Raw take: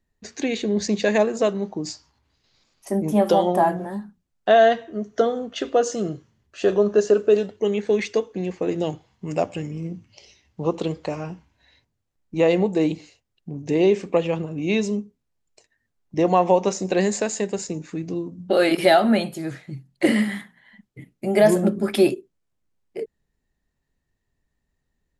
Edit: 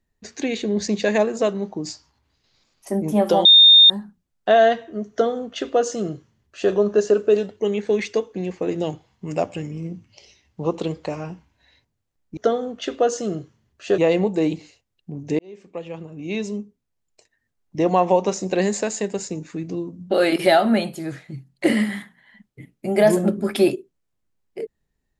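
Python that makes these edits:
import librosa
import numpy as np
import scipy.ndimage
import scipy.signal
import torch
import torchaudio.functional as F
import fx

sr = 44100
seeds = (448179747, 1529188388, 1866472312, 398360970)

y = fx.edit(x, sr, fx.bleep(start_s=3.45, length_s=0.45, hz=3650.0, db=-6.5),
    fx.duplicate(start_s=5.11, length_s=1.61, to_s=12.37),
    fx.fade_in_span(start_s=13.78, length_s=2.5, curve='qsin'), tone=tone)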